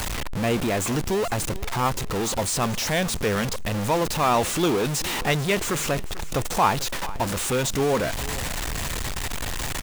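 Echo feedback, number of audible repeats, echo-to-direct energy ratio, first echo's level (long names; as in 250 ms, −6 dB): 31%, 2, −17.0 dB, −17.5 dB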